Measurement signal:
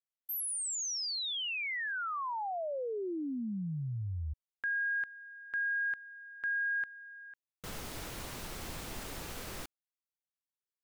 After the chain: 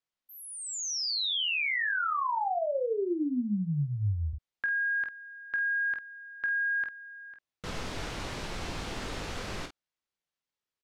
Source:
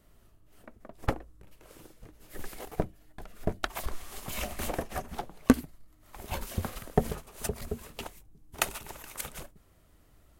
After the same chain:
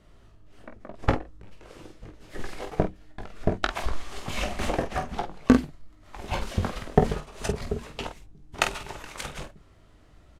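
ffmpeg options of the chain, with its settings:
ffmpeg -i in.wav -filter_complex "[0:a]lowpass=5500,asplit=2[link_01][link_02];[link_02]aecho=0:1:20|48:0.376|0.398[link_03];[link_01][link_03]amix=inputs=2:normalize=0,alimiter=level_in=6.5dB:limit=-1dB:release=50:level=0:latency=1,volume=-1dB" out.wav

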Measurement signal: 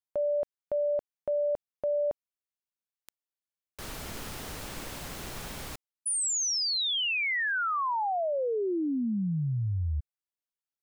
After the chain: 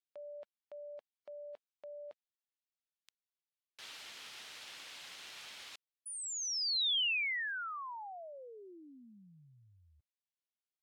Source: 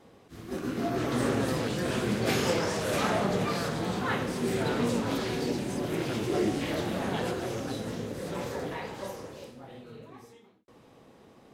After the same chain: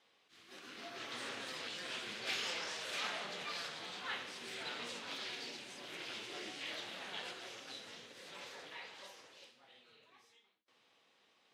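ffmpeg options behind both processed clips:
ffmpeg -i in.wav -af "bandpass=frequency=3300:width_type=q:width=1.3:csg=0,volume=-2.5dB" -ar 48000 -c:a aac -b:a 64k out.aac

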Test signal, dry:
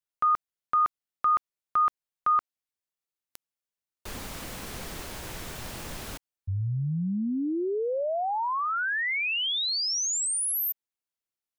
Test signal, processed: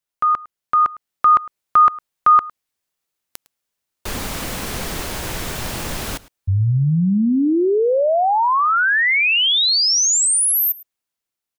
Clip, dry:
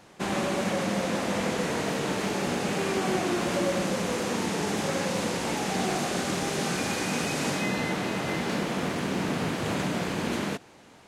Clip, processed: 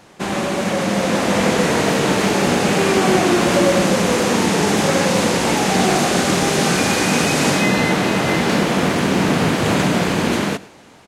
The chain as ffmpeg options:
ffmpeg -i in.wav -filter_complex "[0:a]dynaudnorm=framelen=290:gausssize=7:maxgain=5.5dB,asplit=2[link_01][link_02];[link_02]aecho=0:1:107:0.0891[link_03];[link_01][link_03]amix=inputs=2:normalize=0,volume=6.5dB" out.wav

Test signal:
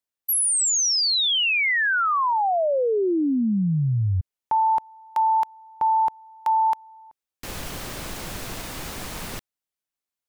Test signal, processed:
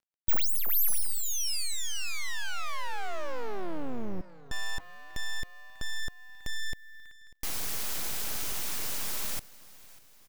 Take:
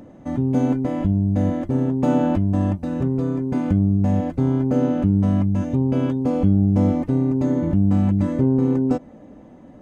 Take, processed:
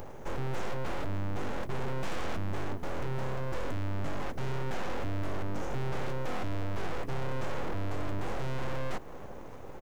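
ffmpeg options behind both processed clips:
ffmpeg -i in.wav -filter_complex "[0:a]asplit=2[link_01][link_02];[link_02]acompressor=threshold=-33dB:ratio=4:release=137:detection=rms,volume=0.5dB[link_03];[link_01][link_03]amix=inputs=2:normalize=0,asoftclip=type=tanh:threshold=-22dB,acrusher=bits=11:mix=0:aa=0.000001,aexciter=amount=1.8:drive=5.4:freq=5000,asplit=2[link_04][link_05];[link_05]aecho=0:1:594|1188|1782|2376:0.0891|0.0455|0.0232|0.0118[link_06];[link_04][link_06]amix=inputs=2:normalize=0,aeval=exprs='abs(val(0))':channel_layout=same,volume=-4dB" out.wav

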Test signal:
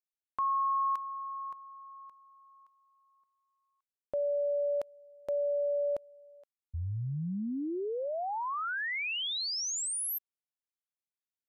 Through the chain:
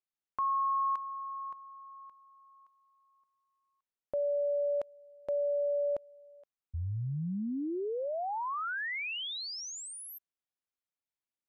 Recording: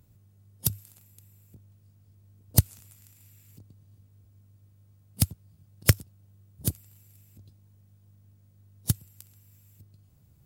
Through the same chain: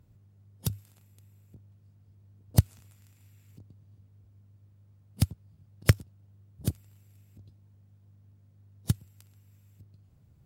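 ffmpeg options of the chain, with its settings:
ffmpeg -i in.wav -af "lowpass=frequency=2800:poles=1" out.wav

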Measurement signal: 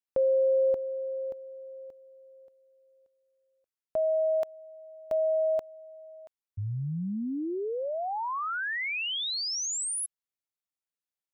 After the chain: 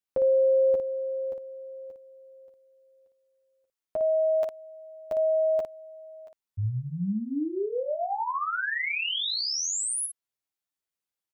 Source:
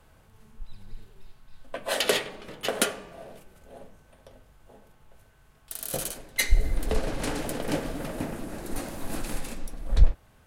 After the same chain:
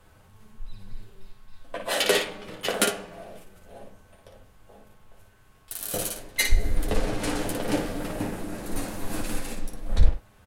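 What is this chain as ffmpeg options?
ffmpeg -i in.wav -af "aecho=1:1:10|57:0.668|0.531" out.wav

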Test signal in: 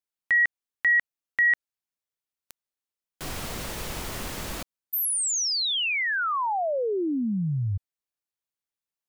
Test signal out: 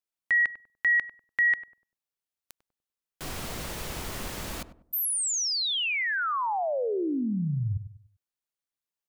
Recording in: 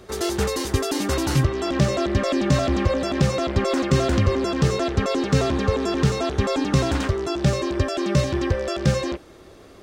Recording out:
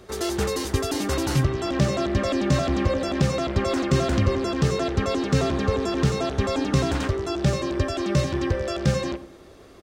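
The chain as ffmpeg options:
ffmpeg -i in.wav -filter_complex "[0:a]asplit=2[link_01][link_02];[link_02]adelay=98,lowpass=frequency=880:poles=1,volume=-11dB,asplit=2[link_03][link_04];[link_04]adelay=98,lowpass=frequency=880:poles=1,volume=0.36,asplit=2[link_05][link_06];[link_06]adelay=98,lowpass=frequency=880:poles=1,volume=0.36,asplit=2[link_07][link_08];[link_08]adelay=98,lowpass=frequency=880:poles=1,volume=0.36[link_09];[link_01][link_03][link_05][link_07][link_09]amix=inputs=5:normalize=0,volume=-2dB" out.wav

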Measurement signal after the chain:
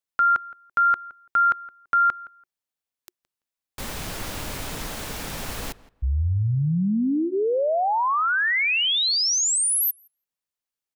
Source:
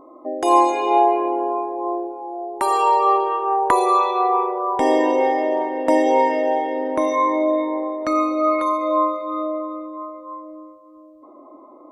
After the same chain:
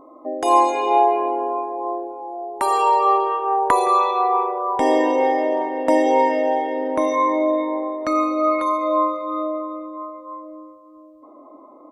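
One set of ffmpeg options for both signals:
ffmpeg -i in.wav -filter_complex "[0:a]bandreject=frequency=360:width=12,asplit=2[link_01][link_02];[link_02]adelay=168,lowpass=frequency=2400:poles=1,volume=-19.5dB,asplit=2[link_03][link_04];[link_04]adelay=168,lowpass=frequency=2400:poles=1,volume=0.2[link_05];[link_03][link_05]amix=inputs=2:normalize=0[link_06];[link_01][link_06]amix=inputs=2:normalize=0" out.wav

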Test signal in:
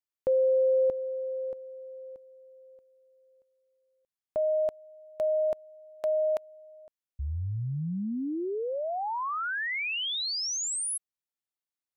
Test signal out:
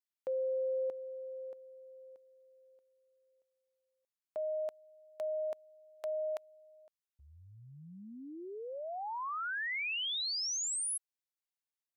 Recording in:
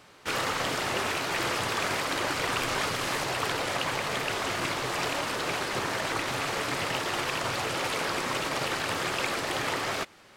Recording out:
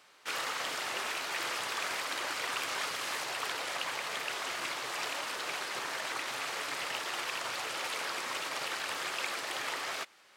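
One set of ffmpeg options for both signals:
ffmpeg -i in.wav -af "highpass=frequency=980:poles=1,volume=-4dB" out.wav

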